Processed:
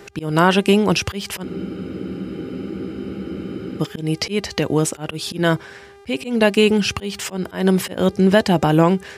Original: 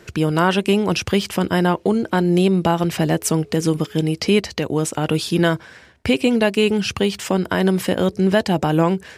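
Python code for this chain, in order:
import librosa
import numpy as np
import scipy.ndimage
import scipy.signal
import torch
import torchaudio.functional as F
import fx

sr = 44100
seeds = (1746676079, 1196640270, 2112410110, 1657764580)

y = fx.dmg_buzz(x, sr, base_hz=400.0, harmonics=32, level_db=-48.0, tilt_db=-8, odd_only=False)
y = fx.auto_swell(y, sr, attack_ms=190.0)
y = fx.spec_freeze(y, sr, seeds[0], at_s=1.46, hold_s=2.33)
y = y * 10.0 ** (2.5 / 20.0)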